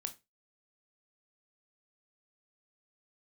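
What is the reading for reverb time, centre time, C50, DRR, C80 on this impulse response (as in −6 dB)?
0.20 s, 6 ms, 16.5 dB, 7.0 dB, 24.5 dB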